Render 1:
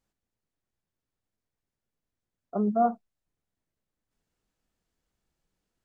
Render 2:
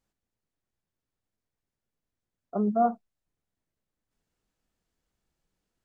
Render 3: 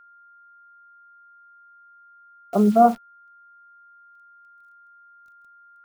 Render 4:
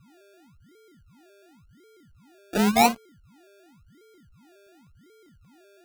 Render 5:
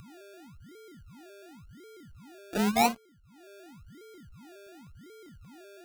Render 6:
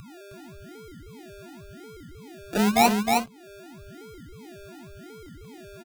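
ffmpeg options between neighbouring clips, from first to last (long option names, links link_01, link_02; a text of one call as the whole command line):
ffmpeg -i in.wav -af anull out.wav
ffmpeg -i in.wav -af "acrusher=bits=9:dc=4:mix=0:aa=0.000001,aeval=exprs='val(0)+0.00126*sin(2*PI*1400*n/s)':channel_layout=same,volume=9dB" out.wav
ffmpeg -i in.wav -af "acrusher=samples=34:mix=1:aa=0.000001:lfo=1:lforange=20.4:lforate=0.92,volume=-4dB" out.wav
ffmpeg -i in.wav -af "acompressor=mode=upward:threshold=-36dB:ratio=2.5,volume=-5.5dB" out.wav
ffmpeg -i in.wav -af "aecho=1:1:313:0.631,volume=5dB" out.wav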